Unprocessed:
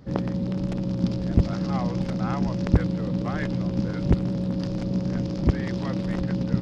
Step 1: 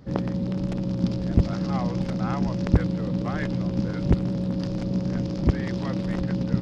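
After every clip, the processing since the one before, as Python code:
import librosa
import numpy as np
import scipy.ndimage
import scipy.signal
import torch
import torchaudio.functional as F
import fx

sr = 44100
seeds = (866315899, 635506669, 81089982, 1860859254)

y = x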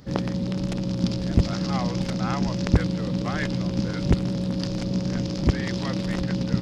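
y = fx.high_shelf(x, sr, hz=2300.0, db=11.0)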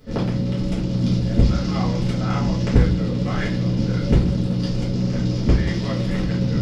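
y = fx.room_shoebox(x, sr, seeds[0], volume_m3=35.0, walls='mixed', distance_m=1.5)
y = F.gain(torch.from_numpy(y), -7.0).numpy()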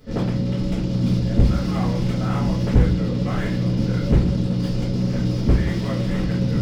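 y = fx.slew_limit(x, sr, full_power_hz=56.0)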